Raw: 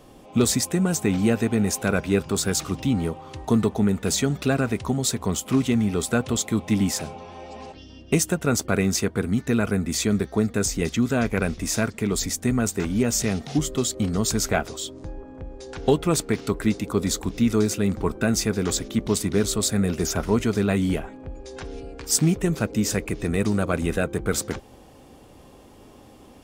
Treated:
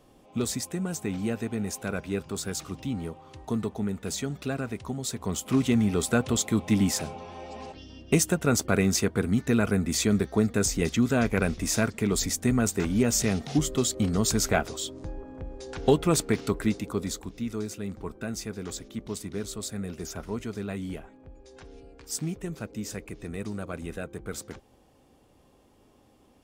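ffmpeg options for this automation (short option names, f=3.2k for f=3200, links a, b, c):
-af "volume=-1.5dB,afade=t=in:st=5.05:d=0.68:silence=0.421697,afade=t=out:st=16.36:d=0.97:silence=0.298538"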